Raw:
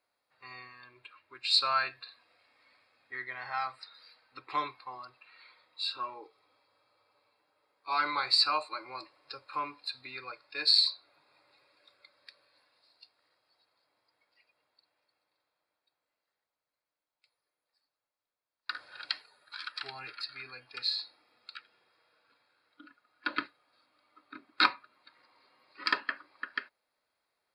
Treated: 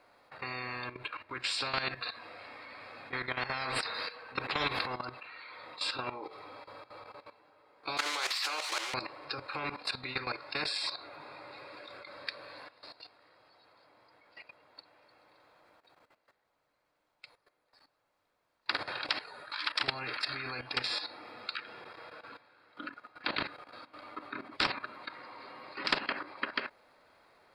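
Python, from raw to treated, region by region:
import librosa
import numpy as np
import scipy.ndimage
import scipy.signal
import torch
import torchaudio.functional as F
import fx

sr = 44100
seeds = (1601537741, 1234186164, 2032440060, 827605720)

y = fx.chain(x, sr, fx.small_body(hz=(470.0, 1100.0, 1600.0, 2600.0), ring_ms=40, db=9),
    fx.sustainer(db_per_s=51.0), at=(3.65, 4.95))
y = fx.chain(y, sr, fx.crossing_spikes(level_db=-28.5),
    fx.highpass(hz=950.0, slope=12),
    fx.air_absorb(metres=78.0), at=(7.97, 8.94))
y = fx.lowpass(y, sr, hz=1600.0, slope=6)
y = fx.level_steps(y, sr, step_db=15)
y = fx.spectral_comp(y, sr, ratio=4.0)
y = F.gain(torch.from_numpy(y), 4.5).numpy()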